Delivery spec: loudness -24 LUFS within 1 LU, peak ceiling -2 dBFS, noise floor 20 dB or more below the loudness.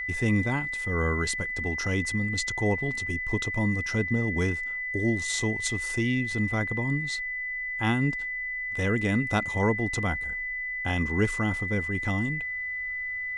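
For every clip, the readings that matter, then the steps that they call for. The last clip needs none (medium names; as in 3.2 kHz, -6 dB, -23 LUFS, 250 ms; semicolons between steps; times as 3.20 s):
steady tone 2 kHz; tone level -30 dBFS; loudness -27.5 LUFS; peak level -11.0 dBFS; loudness target -24.0 LUFS
-> band-stop 2 kHz, Q 30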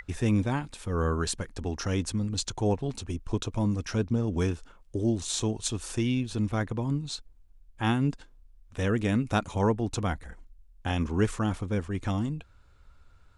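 steady tone not found; loudness -30.0 LUFS; peak level -12.0 dBFS; loudness target -24.0 LUFS
-> trim +6 dB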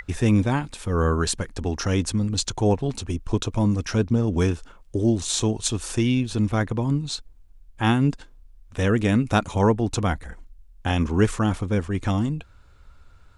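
loudness -24.0 LUFS; peak level -6.0 dBFS; noise floor -51 dBFS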